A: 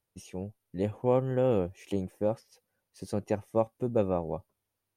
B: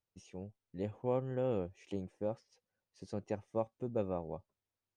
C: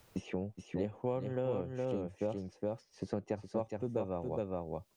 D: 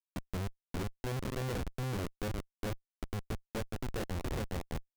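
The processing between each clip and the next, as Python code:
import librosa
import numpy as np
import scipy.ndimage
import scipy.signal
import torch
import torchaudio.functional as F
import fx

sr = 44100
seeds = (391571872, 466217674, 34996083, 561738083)

y1 = scipy.signal.sosfilt(scipy.signal.butter(4, 7400.0, 'lowpass', fs=sr, output='sos'), x)
y1 = y1 * 10.0 ** (-8.5 / 20.0)
y2 = y1 + 10.0 ** (-4.0 / 20.0) * np.pad(y1, (int(415 * sr / 1000.0), 0))[:len(y1)]
y2 = fx.band_squash(y2, sr, depth_pct=100)
y3 = fx.filter_lfo_lowpass(y2, sr, shape='saw_down', hz=6.0, low_hz=460.0, high_hz=2100.0, q=0.73)
y3 = fx.schmitt(y3, sr, flips_db=-36.0)
y3 = y3 * 10.0 ** (3.5 / 20.0)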